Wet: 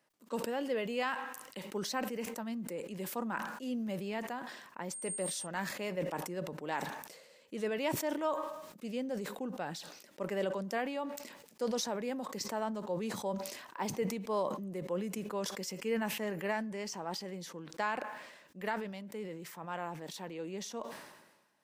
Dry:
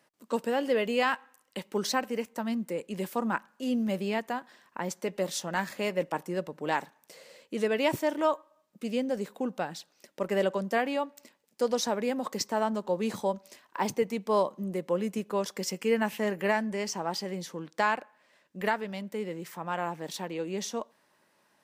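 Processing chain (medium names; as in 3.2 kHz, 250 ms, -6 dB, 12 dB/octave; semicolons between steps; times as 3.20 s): 4.92–5.45 s: whistle 8.6 kHz -34 dBFS; decay stretcher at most 51 dB/s; trim -8 dB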